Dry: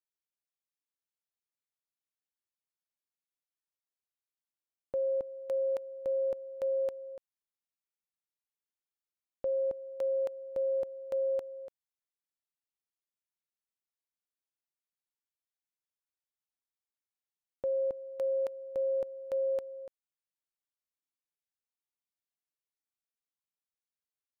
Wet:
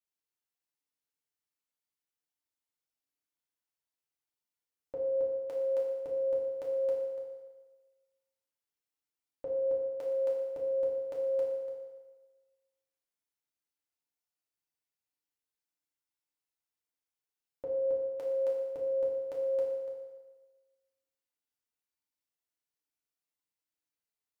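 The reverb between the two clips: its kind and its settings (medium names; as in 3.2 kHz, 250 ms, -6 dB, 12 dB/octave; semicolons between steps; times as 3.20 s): FDN reverb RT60 1.3 s, low-frequency decay 0.8×, high-frequency decay 0.9×, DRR -4.5 dB; trim -5 dB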